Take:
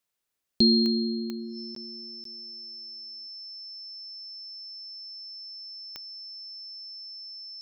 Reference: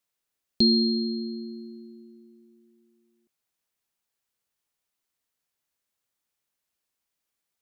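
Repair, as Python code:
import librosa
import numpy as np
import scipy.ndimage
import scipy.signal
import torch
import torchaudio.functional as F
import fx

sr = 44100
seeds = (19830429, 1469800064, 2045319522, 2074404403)

y = fx.fix_declick_ar(x, sr, threshold=10.0)
y = fx.notch(y, sr, hz=5300.0, q=30.0)
y = fx.fix_interpolate(y, sr, at_s=(1.75, 2.24), length_ms=13.0)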